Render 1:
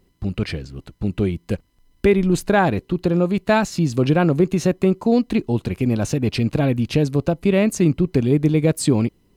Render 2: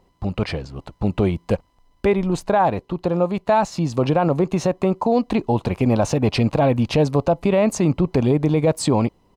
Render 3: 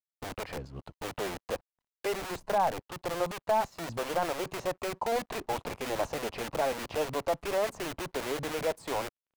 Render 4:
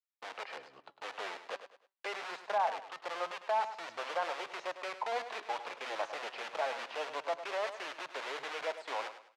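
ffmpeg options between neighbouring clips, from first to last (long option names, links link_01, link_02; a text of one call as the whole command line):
ffmpeg -i in.wav -af "firequalizer=gain_entry='entry(370,0);entry(540,8);entry(920,13);entry(1500,1);entry(5800,0);entry(12000,-7)':delay=0.05:min_phase=1,dynaudnorm=framelen=230:gausssize=9:maxgain=11.5dB,alimiter=level_in=7.5dB:limit=-1dB:release=50:level=0:latency=1,volume=-8dB" out.wav
ffmpeg -i in.wav -filter_complex "[0:a]acrossover=split=390|1900[link_01][link_02][link_03];[link_01]aeval=exprs='(mod(16.8*val(0)+1,2)-1)/16.8':channel_layout=same[link_04];[link_03]acompressor=threshold=-44dB:ratio=5[link_05];[link_04][link_02][link_05]amix=inputs=3:normalize=0,aeval=exprs='sgn(val(0))*max(abs(val(0))-0.00316,0)':channel_layout=same,volume=-8.5dB" out.wav
ffmpeg -i in.wav -filter_complex "[0:a]flanger=delay=1.4:depth=4.7:regen=87:speed=0.25:shape=triangular,highpass=780,lowpass=4100,asplit=2[link_01][link_02];[link_02]aecho=0:1:103|206|309:0.266|0.0878|0.029[link_03];[link_01][link_03]amix=inputs=2:normalize=0,volume=3.5dB" out.wav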